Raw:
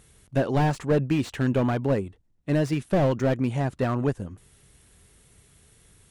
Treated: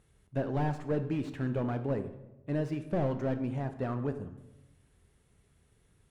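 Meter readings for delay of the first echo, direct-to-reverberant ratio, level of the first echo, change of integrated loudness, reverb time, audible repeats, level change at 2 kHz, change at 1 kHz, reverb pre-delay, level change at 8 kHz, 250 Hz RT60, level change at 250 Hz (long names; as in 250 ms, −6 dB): no echo audible, 8.5 dB, no echo audible, −8.5 dB, 1.0 s, no echo audible, −11.0 dB, −8.5 dB, 16 ms, below −15 dB, 1.3 s, −8.0 dB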